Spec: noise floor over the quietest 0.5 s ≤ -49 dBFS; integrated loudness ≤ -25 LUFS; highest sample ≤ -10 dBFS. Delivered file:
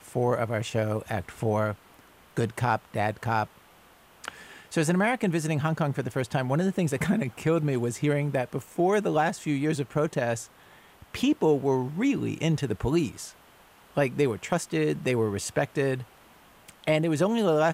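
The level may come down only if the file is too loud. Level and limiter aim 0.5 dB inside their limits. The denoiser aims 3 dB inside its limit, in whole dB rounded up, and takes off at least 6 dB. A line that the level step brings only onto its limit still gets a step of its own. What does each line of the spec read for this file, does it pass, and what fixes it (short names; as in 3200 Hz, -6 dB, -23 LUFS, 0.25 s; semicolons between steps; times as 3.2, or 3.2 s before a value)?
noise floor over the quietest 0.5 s -56 dBFS: OK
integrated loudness -27.0 LUFS: OK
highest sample -11.0 dBFS: OK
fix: none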